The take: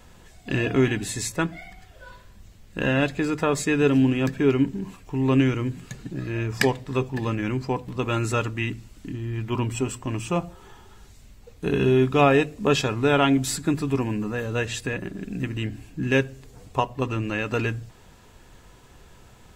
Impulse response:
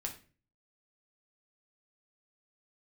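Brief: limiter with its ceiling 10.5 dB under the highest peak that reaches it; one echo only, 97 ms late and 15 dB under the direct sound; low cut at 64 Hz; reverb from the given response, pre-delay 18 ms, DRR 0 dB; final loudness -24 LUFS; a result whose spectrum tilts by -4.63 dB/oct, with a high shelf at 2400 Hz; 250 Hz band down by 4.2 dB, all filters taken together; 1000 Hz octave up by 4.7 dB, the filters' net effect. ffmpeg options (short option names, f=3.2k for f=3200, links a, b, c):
-filter_complex "[0:a]highpass=64,equalizer=f=250:t=o:g=-5.5,equalizer=f=1k:t=o:g=5.5,highshelf=f=2.4k:g=5.5,alimiter=limit=-10.5dB:level=0:latency=1,aecho=1:1:97:0.178,asplit=2[a][b];[1:a]atrim=start_sample=2205,adelay=18[c];[b][c]afir=irnorm=-1:irlink=0,volume=0.5dB[d];[a][d]amix=inputs=2:normalize=0,volume=-2dB"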